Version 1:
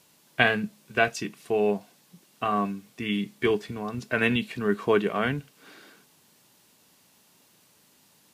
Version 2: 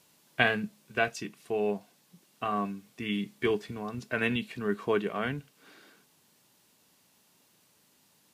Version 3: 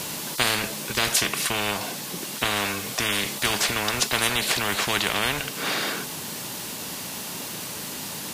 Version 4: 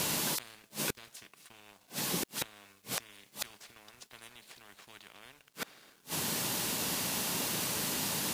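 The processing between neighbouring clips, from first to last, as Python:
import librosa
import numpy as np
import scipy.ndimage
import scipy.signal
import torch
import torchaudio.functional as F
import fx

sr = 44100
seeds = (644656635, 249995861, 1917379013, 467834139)

y1 = fx.rider(x, sr, range_db=4, speed_s=2.0)
y1 = y1 * 10.0 ** (-5.0 / 20.0)
y2 = fx.spectral_comp(y1, sr, ratio=10.0)
y2 = y2 * 10.0 ** (1.5 / 20.0)
y3 = fx.gate_flip(y2, sr, shuts_db=-20.0, range_db=-27)
y3 = np.sign(y3) * np.maximum(np.abs(y3) - 10.0 ** (-58.0 / 20.0), 0.0)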